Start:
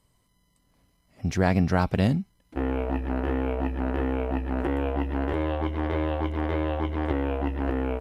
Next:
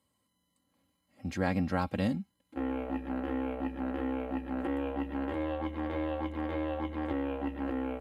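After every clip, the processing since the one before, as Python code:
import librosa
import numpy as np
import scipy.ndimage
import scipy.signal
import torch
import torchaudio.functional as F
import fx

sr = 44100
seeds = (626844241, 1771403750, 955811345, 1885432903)

y = scipy.signal.sosfilt(scipy.signal.butter(4, 83.0, 'highpass', fs=sr, output='sos'), x)
y = fx.notch(y, sr, hz=5700.0, q=6.8)
y = y + 0.63 * np.pad(y, (int(3.7 * sr / 1000.0), 0))[:len(y)]
y = F.gain(torch.from_numpy(y), -8.0).numpy()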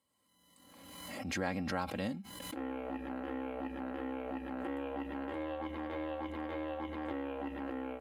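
y = fx.low_shelf(x, sr, hz=210.0, db=-9.5)
y = fx.pre_swell(y, sr, db_per_s=36.0)
y = F.gain(torch.from_numpy(y), -3.5).numpy()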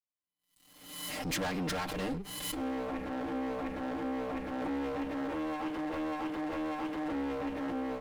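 y = fx.lower_of_two(x, sr, delay_ms=6.6)
y = fx.leveller(y, sr, passes=3)
y = fx.band_widen(y, sr, depth_pct=40)
y = F.gain(torch.from_numpy(y), -3.0).numpy()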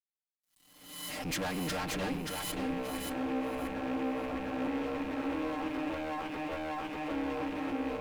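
y = fx.rattle_buzz(x, sr, strikes_db=-44.0, level_db=-37.0)
y = fx.quant_dither(y, sr, seeds[0], bits=12, dither='none')
y = fx.echo_feedback(y, sr, ms=579, feedback_pct=22, wet_db=-4)
y = F.gain(torch.from_numpy(y), -1.0).numpy()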